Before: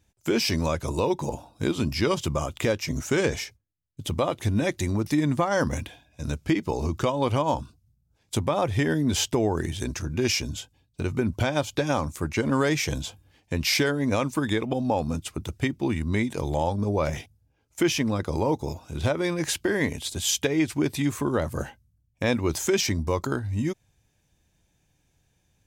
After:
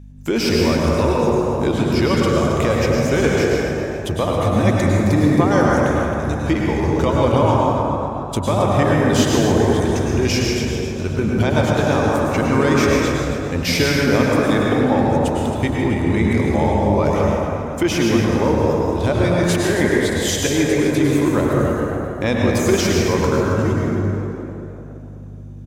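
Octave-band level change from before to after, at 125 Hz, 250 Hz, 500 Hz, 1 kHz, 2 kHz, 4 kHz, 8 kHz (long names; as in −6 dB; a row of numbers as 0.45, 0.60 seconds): +9.5, +9.5, +10.0, +9.5, +8.0, +5.0, +4.0 decibels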